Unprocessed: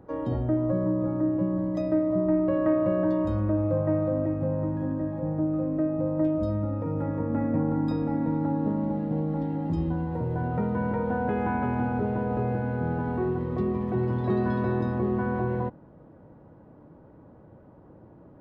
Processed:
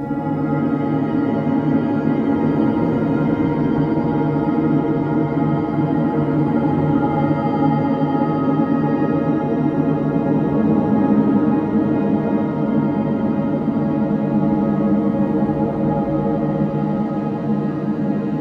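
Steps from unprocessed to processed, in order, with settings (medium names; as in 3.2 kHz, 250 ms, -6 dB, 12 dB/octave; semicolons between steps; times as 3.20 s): treble shelf 2.6 kHz +9 dB; Paulstretch 20×, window 0.10 s, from 8.14 s; pitch-shifted reverb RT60 3.8 s, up +7 st, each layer -8 dB, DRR -7 dB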